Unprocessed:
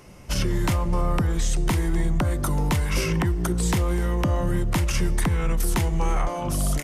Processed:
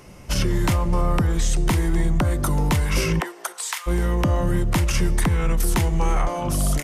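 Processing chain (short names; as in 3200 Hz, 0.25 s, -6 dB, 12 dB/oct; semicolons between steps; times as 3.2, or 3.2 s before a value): 3.19–3.86 HPF 360 Hz -> 1300 Hz 24 dB/oct; gain +2.5 dB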